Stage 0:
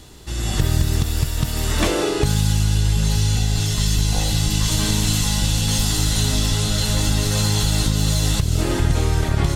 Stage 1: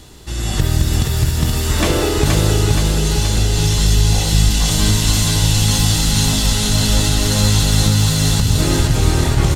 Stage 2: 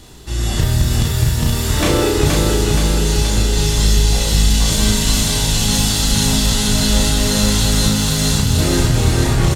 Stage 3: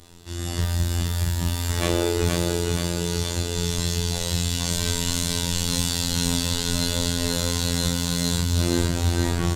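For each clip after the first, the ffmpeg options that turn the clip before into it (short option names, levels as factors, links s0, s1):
-af "aecho=1:1:474|948|1422|1896|2370|2844|3318|3792:0.668|0.394|0.233|0.137|0.081|0.0478|0.0282|0.0166,volume=1.33"
-filter_complex "[0:a]asplit=2[s0][s1];[s1]adelay=34,volume=0.708[s2];[s0][s2]amix=inputs=2:normalize=0,volume=0.891"
-af "afftfilt=real='hypot(re,im)*cos(PI*b)':imag='0':win_size=2048:overlap=0.75,volume=0.596"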